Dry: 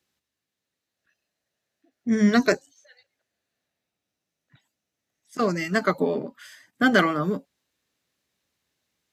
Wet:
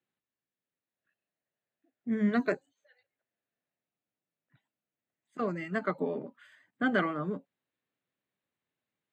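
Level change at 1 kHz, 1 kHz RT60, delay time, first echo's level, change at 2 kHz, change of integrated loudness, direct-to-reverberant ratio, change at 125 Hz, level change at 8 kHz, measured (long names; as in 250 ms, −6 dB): −9.0 dB, no reverb audible, no echo audible, no echo audible, −10.0 dB, −9.0 dB, no reverb audible, −8.5 dB, below −20 dB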